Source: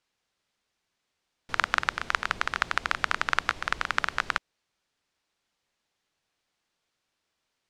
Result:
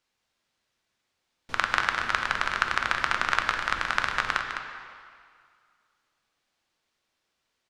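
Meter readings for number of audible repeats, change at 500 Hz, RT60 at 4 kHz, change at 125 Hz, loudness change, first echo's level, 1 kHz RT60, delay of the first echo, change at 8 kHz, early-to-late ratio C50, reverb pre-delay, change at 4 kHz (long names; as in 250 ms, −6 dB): 1, +2.0 dB, 1.8 s, +2.0 dB, +2.0 dB, −8.0 dB, 2.2 s, 206 ms, +1.0 dB, 3.5 dB, 3 ms, +2.0 dB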